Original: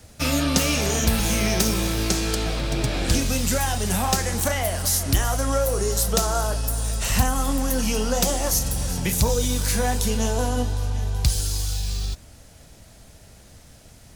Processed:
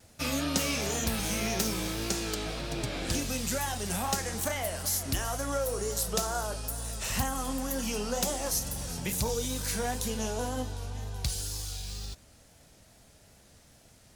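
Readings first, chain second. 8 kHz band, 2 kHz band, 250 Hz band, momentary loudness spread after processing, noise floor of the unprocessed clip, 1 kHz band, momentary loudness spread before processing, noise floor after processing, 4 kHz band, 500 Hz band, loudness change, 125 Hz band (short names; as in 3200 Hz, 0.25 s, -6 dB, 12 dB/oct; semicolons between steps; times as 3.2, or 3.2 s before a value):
-7.5 dB, -7.5 dB, -8.5 dB, 6 LU, -48 dBFS, -7.5 dB, 5 LU, -58 dBFS, -7.5 dB, -8.0 dB, -8.5 dB, -11.5 dB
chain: wow and flutter 68 cents; low shelf 96 Hz -8 dB; gain -7.5 dB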